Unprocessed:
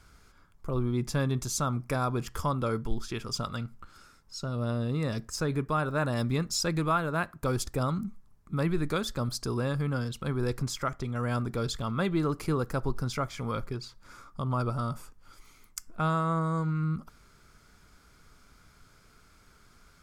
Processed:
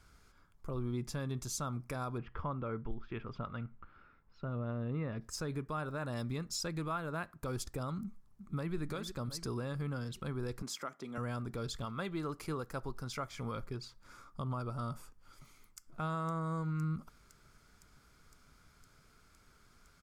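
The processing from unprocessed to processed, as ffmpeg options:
-filter_complex "[0:a]asplit=3[a][b][c];[a]afade=t=out:st=2.17:d=0.02[d];[b]lowpass=f=2.6k:w=0.5412,lowpass=f=2.6k:w=1.3066,afade=t=in:st=2.17:d=0.02,afade=t=out:st=5.2:d=0.02[e];[c]afade=t=in:st=5.2:d=0.02[f];[d][e][f]amix=inputs=3:normalize=0,asplit=2[g][h];[h]afade=t=in:st=8.03:d=0.01,afade=t=out:st=8.75:d=0.01,aecho=0:1:360|720|1080|1440|1800:0.316228|0.158114|0.0790569|0.0395285|0.0197642[i];[g][i]amix=inputs=2:normalize=0,asettb=1/sr,asplit=3[j][k][l];[j]atrim=end=10.624[m];[k]atrim=start=10.62:end=11.18,asetpts=PTS-STARTPTS,afade=t=in:d=0.004:c=qsin,afade=t=out:st=0.556:d=0.004:c=qsin,highpass=f=190:w=0.5412,highpass=f=190:w=1.3066[n];[l]atrim=start=11.176[o];[m][n]acrossfade=d=0.004:c1=hsin:c2=qsin[p];[p][o]acrossfade=d=0.004:c1=qsin:c2=hsin,asettb=1/sr,asplit=3[q][r][s];[q]atrim=end=11.854[t];[r]atrim=start=11.85:end=13.31,asetpts=PTS-STARTPTS,afade=t=in:d=0.004:c=qsin,afade=t=out:st=1.456:d=0.004:c=qsin,lowshelf=f=440:g=-5.5[u];[s]atrim=start=13.306[v];[t][u]acrossfade=d=0.004:c1=hsin:c2=qsin[w];[w][v]acrossfade=d=0.004:c1=qsin:c2=hsin,asplit=2[x][y];[y]afade=t=in:st=14.9:d=0.01,afade=t=out:st=15.88:d=0.01,aecho=0:1:510|1020|1530|2040|2550|3060|3570|4080|4590|5100|5610|6120:0.141254|0.113003|0.0904024|0.0723219|0.0578575|0.046286|0.0370288|0.0296231|0.0236984|0.0189588|0.015167|0.0121336[z];[x][z]amix=inputs=2:normalize=0,alimiter=limit=-22.5dB:level=0:latency=1:release=266,volume=-5.5dB"

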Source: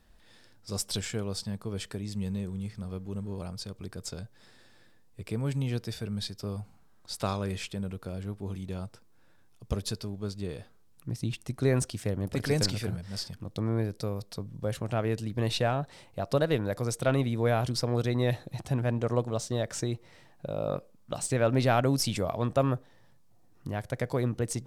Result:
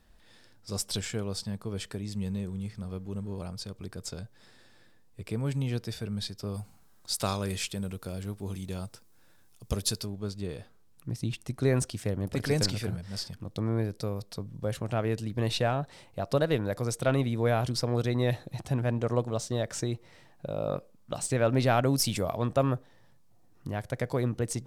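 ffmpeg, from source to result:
-filter_complex "[0:a]asettb=1/sr,asplit=3[a][b][c];[a]atrim=end=6.544[d];[b]atrim=start=6.54:end=10.06,asetpts=PTS-STARTPTS,afade=t=in:d=0.004:c=qsin,afade=t=out:st=3.516:d=0.004:c=qsin,highshelf=f=4.3k:g=11[e];[c]atrim=start=10.056[f];[d][e]acrossfade=d=0.004:c1=hsin:c2=qsin[g];[g][f]acrossfade=d=0.004:c1=qsin:c2=hsin,asettb=1/sr,asplit=3[h][i][j];[h]atrim=end=21.964[k];[i]atrim=start=21.96:end=22.37,asetpts=PTS-STARTPTS,afade=t=in:d=0.004:c=qsin,afade=t=out:st=0.406:d=0.004:c=qsin,highshelf=f=11k:g=10[l];[j]atrim=start=22.366[m];[k][l]acrossfade=d=0.004:c1=hsin:c2=qsin[n];[n][m]acrossfade=d=0.004:c1=qsin:c2=hsin"

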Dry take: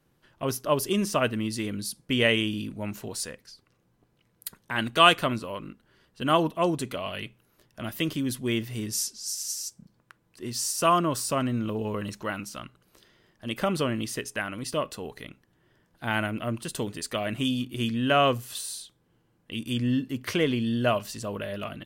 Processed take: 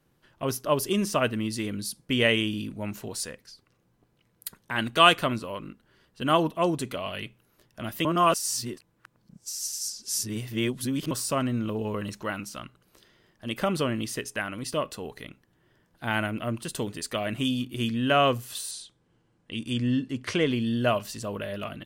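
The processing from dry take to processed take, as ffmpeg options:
-filter_complex "[0:a]asettb=1/sr,asplit=3[a][b][c];[a]atrim=end=18.714[d];[b]atrim=start=18.71:end=20.5,asetpts=PTS-STARTPTS,afade=t=in:d=0.004:c=qsin,afade=t=out:st=1.786:d=0.004:c=qsin,lowpass=f=9.4k:w=0.5412,lowpass=f=9.4k:w=1.3066[e];[c]atrim=start=20.496[f];[d][e]acrossfade=d=0.004:c1=hsin:c2=qsin[g];[g][f]acrossfade=d=0.004:c1=qsin:c2=hsin,asplit=3[h][i][j];[h]atrim=end=8.052[k];[i]atrim=start=8.048:end=11.112,asetpts=PTS-STARTPTS,areverse[l];[j]atrim=start=11.108[m];[k][l]acrossfade=d=0.004:c1=hsin:c2=hsin[n];[n][m]acrossfade=d=0.004:c1=hsin:c2=hsin"

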